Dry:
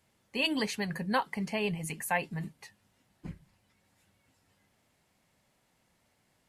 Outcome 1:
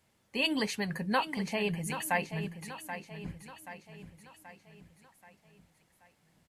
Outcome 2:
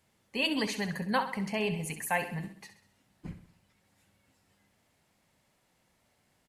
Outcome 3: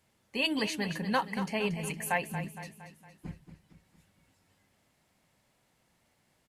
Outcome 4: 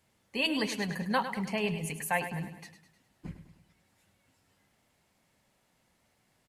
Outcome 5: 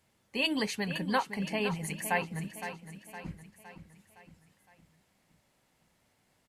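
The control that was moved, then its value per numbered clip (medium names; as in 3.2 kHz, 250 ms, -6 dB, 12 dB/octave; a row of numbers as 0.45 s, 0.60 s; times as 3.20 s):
feedback delay, time: 780 ms, 65 ms, 231 ms, 103 ms, 513 ms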